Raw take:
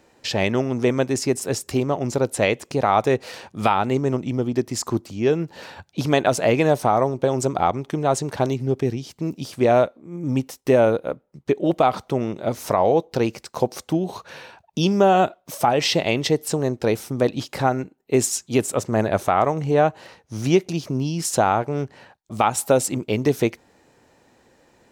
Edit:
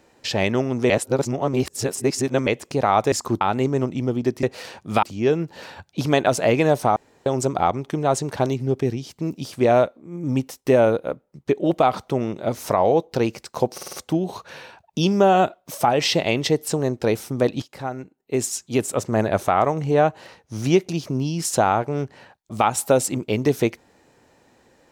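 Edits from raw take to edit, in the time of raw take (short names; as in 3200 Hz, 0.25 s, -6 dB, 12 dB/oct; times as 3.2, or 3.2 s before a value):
0.9–2.47 reverse
3.12–3.72 swap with 4.74–5.03
6.96–7.26 room tone
13.73 stutter 0.05 s, 5 plays
17.42–18.89 fade in, from -13 dB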